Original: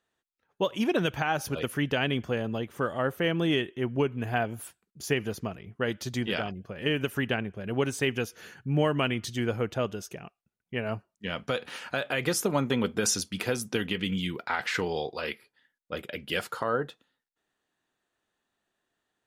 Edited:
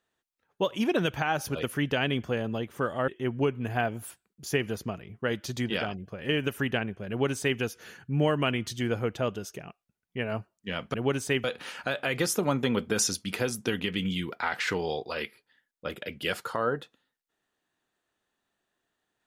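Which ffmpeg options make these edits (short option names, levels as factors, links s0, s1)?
-filter_complex "[0:a]asplit=4[s0][s1][s2][s3];[s0]atrim=end=3.082[s4];[s1]atrim=start=3.648:end=11.512[s5];[s2]atrim=start=7.658:end=8.162[s6];[s3]atrim=start=11.508[s7];[s4][s5]acrossfade=d=0.004:c1=hsin:c2=hsin[s8];[s8][s6]acrossfade=d=0.004:c1=hsin:c2=hsin[s9];[s9][s7]acrossfade=d=0.004:c1=hsin:c2=hsin"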